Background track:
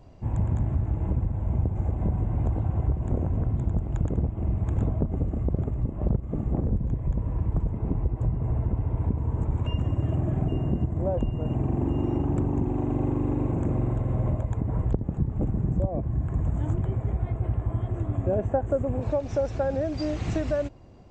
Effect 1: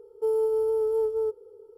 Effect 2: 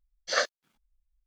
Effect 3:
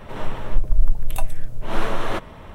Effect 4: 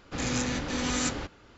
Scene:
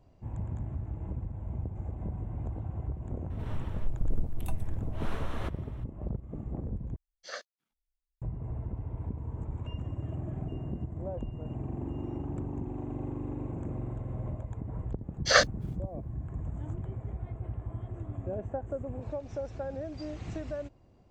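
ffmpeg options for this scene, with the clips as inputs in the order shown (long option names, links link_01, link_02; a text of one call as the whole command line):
ffmpeg -i bed.wav -i cue0.wav -i cue1.wav -i cue2.wav -filter_complex "[2:a]asplit=2[link_01][link_02];[0:a]volume=-10.5dB[link_03];[link_02]dynaudnorm=framelen=100:gausssize=5:maxgain=11.5dB[link_04];[link_03]asplit=2[link_05][link_06];[link_05]atrim=end=6.964[link_07];[link_01]atrim=end=1.26,asetpts=PTS-STARTPTS,volume=-15dB[link_08];[link_06]atrim=start=8.216[link_09];[3:a]atrim=end=2.54,asetpts=PTS-STARTPTS,volume=-14dB,afade=type=in:duration=0.004:curve=hsin,afade=type=out:start_time=2.536:duration=0.004:curve=hsin,adelay=3300[link_10];[link_04]atrim=end=1.26,asetpts=PTS-STARTPTS,volume=-2.5dB,afade=type=in:duration=0.004:curve=hsin,afade=type=out:start_time=1.256:duration=0.004:curve=hsin,adelay=14980[link_11];[link_07][link_08]acrossfade=duration=0.004:curve1=hsin:curve2=hsin[link_12];[link_12][link_09]acrossfade=duration=0.004:curve1=hsin:curve2=hsin[link_13];[link_13][link_10][link_11]amix=inputs=3:normalize=0" out.wav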